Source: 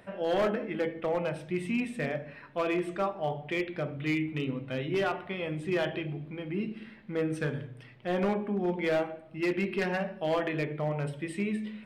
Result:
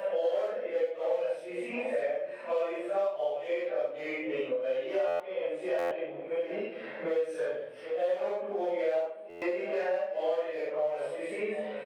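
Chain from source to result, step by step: phase randomisation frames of 200 ms; resonant high-pass 540 Hz, resonance Q 6.4; delay 742 ms -19 dB; buffer glitch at 5.07/5.78/9.29 s, samples 512, times 10; three bands compressed up and down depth 100%; trim -9 dB

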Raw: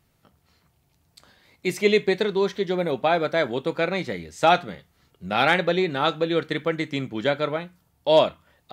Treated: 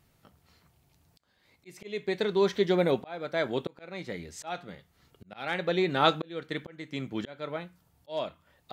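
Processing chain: slow attack 738 ms

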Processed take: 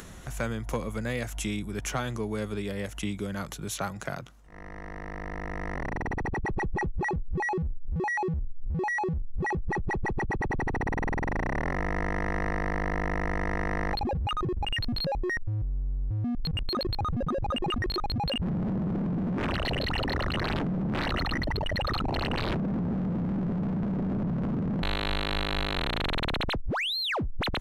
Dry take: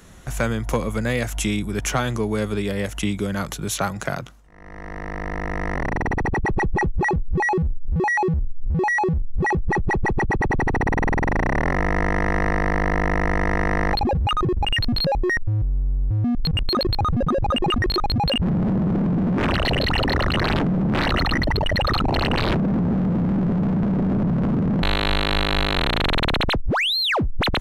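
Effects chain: upward compressor, threshold -27 dBFS; trim -8.5 dB

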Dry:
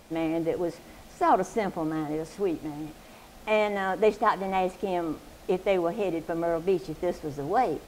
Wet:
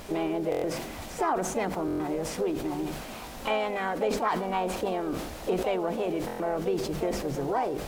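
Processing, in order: hum notches 50/100/150/200 Hz; compression 3:1, threshold -39 dBFS, peak gain reduction 16.5 dB; harmony voices +3 st -15 dB, +4 st -7 dB; buffer glitch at 0.50/1.86/6.26 s, samples 1024, times 5; decay stretcher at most 47 dB/s; trim +8 dB

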